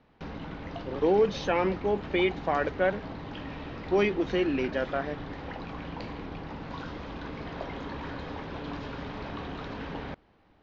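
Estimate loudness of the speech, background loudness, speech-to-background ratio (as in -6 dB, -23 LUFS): -28.0 LUFS, -39.0 LUFS, 11.0 dB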